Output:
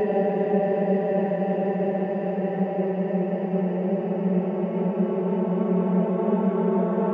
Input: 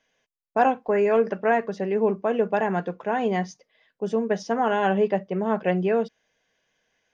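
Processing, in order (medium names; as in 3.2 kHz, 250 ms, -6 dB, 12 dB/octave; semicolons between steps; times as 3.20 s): high-pass 57 Hz; tilt EQ -2 dB/octave; Paulstretch 29×, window 0.50 s, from 5.16 s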